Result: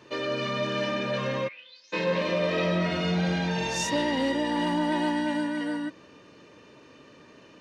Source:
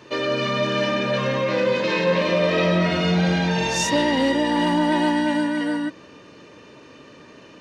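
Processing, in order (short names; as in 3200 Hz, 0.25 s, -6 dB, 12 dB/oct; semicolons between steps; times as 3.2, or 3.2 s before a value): 1.47–1.92 band-pass 2000 Hz -> 6700 Hz, Q 12; gain -6.5 dB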